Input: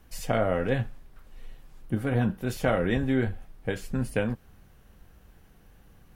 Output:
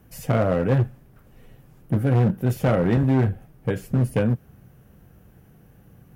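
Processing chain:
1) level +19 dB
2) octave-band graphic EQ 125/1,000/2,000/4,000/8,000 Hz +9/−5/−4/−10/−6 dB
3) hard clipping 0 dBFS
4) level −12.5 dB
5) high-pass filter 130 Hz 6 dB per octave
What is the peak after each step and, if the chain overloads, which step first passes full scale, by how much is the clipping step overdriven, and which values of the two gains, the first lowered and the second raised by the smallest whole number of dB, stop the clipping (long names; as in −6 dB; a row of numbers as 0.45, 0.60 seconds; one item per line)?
+8.0, +10.0, 0.0, −12.5, −8.0 dBFS
step 1, 10.0 dB
step 1 +9 dB, step 4 −2.5 dB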